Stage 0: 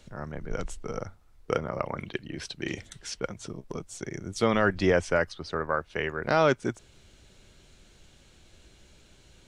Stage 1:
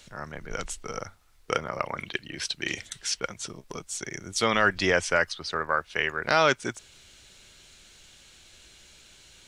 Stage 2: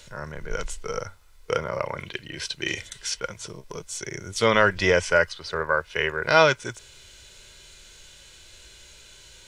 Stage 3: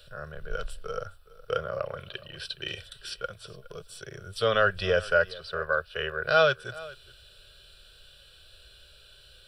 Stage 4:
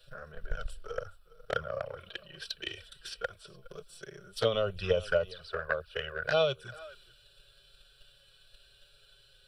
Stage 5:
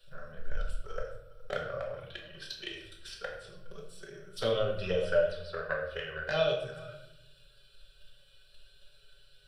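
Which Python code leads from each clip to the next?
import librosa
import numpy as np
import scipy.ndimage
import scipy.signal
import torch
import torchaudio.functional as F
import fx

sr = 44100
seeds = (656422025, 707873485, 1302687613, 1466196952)

y1 = fx.tilt_shelf(x, sr, db=-7.0, hz=970.0)
y1 = F.gain(torch.from_numpy(y1), 2.0).numpy()
y2 = y1 + 0.34 * np.pad(y1, (int(2.0 * sr / 1000.0), 0))[:len(y1)]
y2 = fx.hpss(y2, sr, part='harmonic', gain_db=9)
y2 = F.gain(torch.from_numpy(y2), -2.5).numpy()
y3 = fx.fixed_phaser(y2, sr, hz=1400.0, stages=8)
y3 = y3 + 10.0 ** (-20.0 / 20.0) * np.pad(y3, (int(415 * sr / 1000.0), 0))[:len(y3)]
y3 = F.gain(torch.from_numpy(y3), -2.5).numpy()
y4 = fx.env_flanger(y3, sr, rest_ms=8.2, full_db=-21.5)
y4 = fx.transient(y4, sr, attack_db=7, sustain_db=3)
y4 = F.gain(torch.from_numpy(y4), -5.0).numpy()
y5 = fx.room_shoebox(y4, sr, seeds[0], volume_m3=220.0, walls='mixed', distance_m=1.1)
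y5 = F.gain(torch.from_numpy(y5), -4.5).numpy()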